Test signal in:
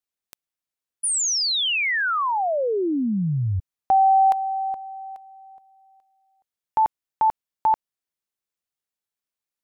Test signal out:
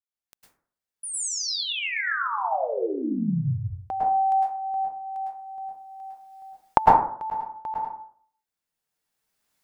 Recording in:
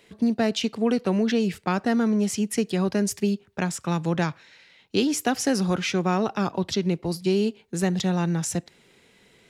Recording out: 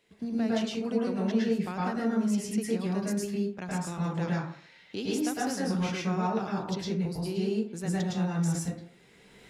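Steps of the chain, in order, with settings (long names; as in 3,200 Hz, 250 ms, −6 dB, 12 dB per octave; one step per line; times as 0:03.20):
camcorder AGC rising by 14 dB per second, up to +27 dB
dense smooth reverb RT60 0.53 s, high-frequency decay 0.45×, pre-delay 95 ms, DRR −5.5 dB
level −13.5 dB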